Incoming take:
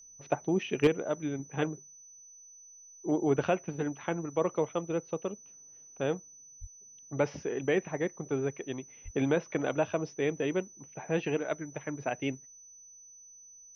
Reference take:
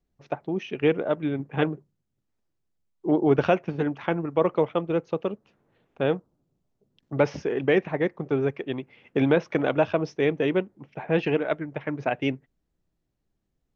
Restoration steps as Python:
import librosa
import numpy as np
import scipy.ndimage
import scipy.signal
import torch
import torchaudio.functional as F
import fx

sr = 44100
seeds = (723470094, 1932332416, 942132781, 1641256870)

y = fx.fix_declip(x, sr, threshold_db=-15.0)
y = fx.notch(y, sr, hz=6000.0, q=30.0)
y = fx.highpass(y, sr, hz=140.0, slope=24, at=(6.6, 6.72), fade=0.02)
y = fx.highpass(y, sr, hz=140.0, slope=24, at=(9.04, 9.16), fade=0.02)
y = fx.fix_level(y, sr, at_s=0.87, step_db=7.0)